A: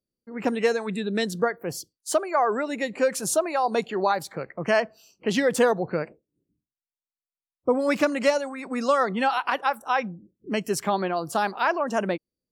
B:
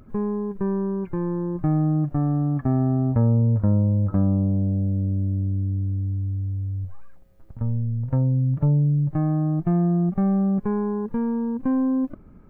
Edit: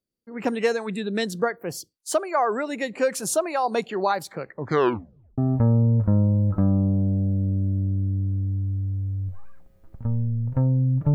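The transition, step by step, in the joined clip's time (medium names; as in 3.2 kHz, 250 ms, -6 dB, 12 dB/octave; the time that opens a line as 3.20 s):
A
4.48 s: tape stop 0.90 s
5.38 s: go over to B from 2.94 s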